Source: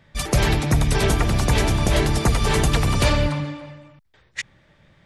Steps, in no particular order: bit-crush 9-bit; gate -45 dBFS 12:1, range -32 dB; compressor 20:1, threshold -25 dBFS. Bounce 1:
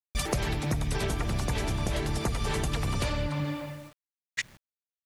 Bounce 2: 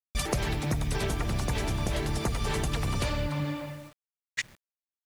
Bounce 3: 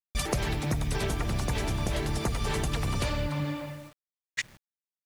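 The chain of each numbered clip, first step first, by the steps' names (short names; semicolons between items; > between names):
gate > bit-crush > compressor; compressor > gate > bit-crush; gate > compressor > bit-crush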